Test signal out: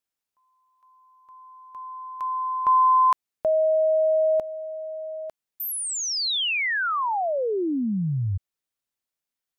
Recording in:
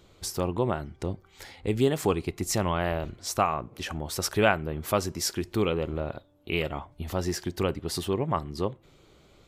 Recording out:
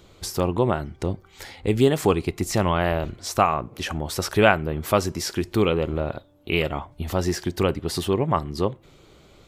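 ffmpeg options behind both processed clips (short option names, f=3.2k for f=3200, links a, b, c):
-filter_complex "[0:a]acrossover=split=4100[a][b];[b]acompressor=threshold=-34dB:ratio=4:attack=1:release=60[c];[a][c]amix=inputs=2:normalize=0,volume=5.5dB"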